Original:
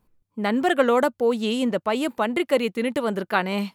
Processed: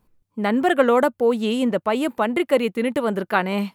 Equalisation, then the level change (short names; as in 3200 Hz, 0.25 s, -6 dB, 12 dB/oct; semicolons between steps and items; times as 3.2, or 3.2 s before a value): dynamic EQ 5200 Hz, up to -6 dB, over -46 dBFS, Q 0.84; +2.5 dB